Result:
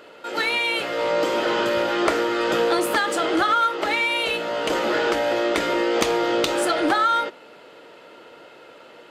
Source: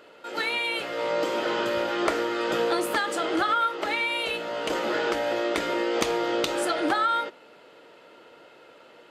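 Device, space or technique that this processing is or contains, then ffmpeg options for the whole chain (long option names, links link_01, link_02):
parallel distortion: -filter_complex "[0:a]asplit=2[link_01][link_02];[link_02]asoftclip=type=hard:threshold=-27.5dB,volume=-9dB[link_03];[link_01][link_03]amix=inputs=2:normalize=0,volume=3dB"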